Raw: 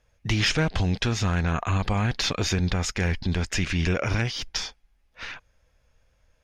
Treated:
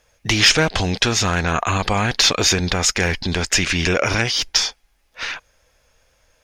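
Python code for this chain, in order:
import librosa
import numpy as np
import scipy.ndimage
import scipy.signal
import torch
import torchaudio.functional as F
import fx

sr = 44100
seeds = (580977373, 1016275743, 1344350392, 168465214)

p1 = fx.bass_treble(x, sr, bass_db=-9, treble_db=5)
p2 = 10.0 ** (-18.0 / 20.0) * np.tanh(p1 / 10.0 ** (-18.0 / 20.0))
p3 = p1 + (p2 * 10.0 ** (-11.5 / 20.0))
y = p3 * 10.0 ** (7.5 / 20.0)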